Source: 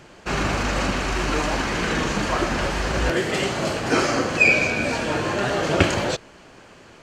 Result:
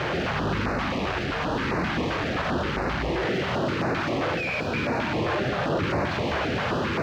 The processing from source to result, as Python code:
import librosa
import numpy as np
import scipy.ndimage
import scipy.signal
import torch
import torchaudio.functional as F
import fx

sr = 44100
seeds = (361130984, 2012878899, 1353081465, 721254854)

p1 = np.sign(x) * np.sqrt(np.mean(np.square(x)))
p2 = scipy.signal.sosfilt(scipy.signal.butter(4, 66.0, 'highpass', fs=sr, output='sos'), p1)
p3 = fx.high_shelf(p2, sr, hz=3900.0, db=-8.5)
p4 = fx.quant_dither(p3, sr, seeds[0], bits=6, dither='none')
p5 = fx.air_absorb(p4, sr, metres=220.0)
p6 = p5 + fx.echo_single(p5, sr, ms=136, db=-6.0, dry=0)
y = fx.filter_held_notch(p6, sr, hz=7.6, low_hz=220.0, high_hz=3200.0)